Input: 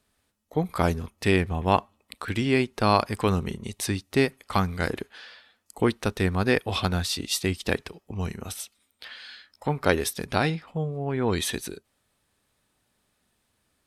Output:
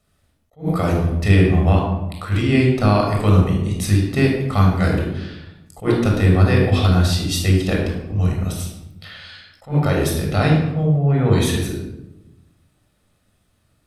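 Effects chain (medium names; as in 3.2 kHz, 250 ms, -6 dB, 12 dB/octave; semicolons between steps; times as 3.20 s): peak limiter -12 dBFS, peak gain reduction 8 dB; bass shelf 410 Hz +4 dB; reverberation RT60 0.90 s, pre-delay 20 ms, DRR -1 dB; attacks held to a fixed rise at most 280 dB/s; trim -1 dB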